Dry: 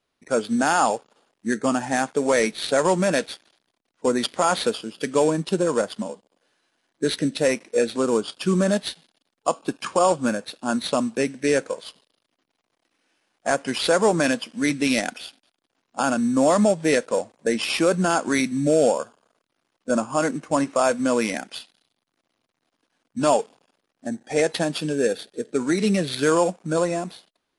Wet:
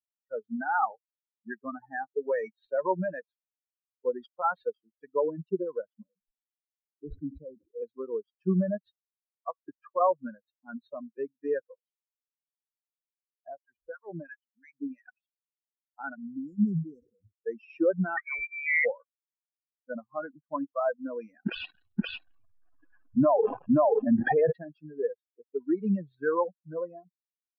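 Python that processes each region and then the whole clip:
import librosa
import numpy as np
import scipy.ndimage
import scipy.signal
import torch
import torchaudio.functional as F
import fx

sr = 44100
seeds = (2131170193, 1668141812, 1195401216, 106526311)

y = fx.chain(x, sr, fx.moving_average(points=50),
    fx.sustainer(db_per_s=60.0), at=(6.03, 7.82))
y = fx.chain(y, sr, fx.high_shelf(hz=3800.0, db=-4.5),
    fx.harmonic_tremolo(hz=2.9, depth_pct=100, crossover_hz=1100.0), at=(13.48, 15.07))
y = fx.chain(y, sr, fx.brickwall_bandstop(low_hz=540.0, high_hz=3200.0),
    fx.fixed_phaser(hz=1400.0, stages=4),
    fx.sustainer(db_per_s=36.0), at=(16.15, 17.32))
y = fx.chain(y, sr, fx.law_mismatch(coded='mu'),
    fx.resample_bad(factor=6, down='filtered', up='hold'),
    fx.freq_invert(carrier_hz=2600), at=(18.17, 18.85))
y = fx.chain(y, sr, fx.gaussian_blur(sigma=1.7),
    fx.echo_single(ms=527, db=-5.5),
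    fx.env_flatten(amount_pct=100), at=(21.46, 24.52))
y = fx.bin_expand(y, sr, power=3.0)
y = scipy.signal.sosfilt(scipy.signal.butter(4, 1900.0, 'lowpass', fs=sr, output='sos'), y)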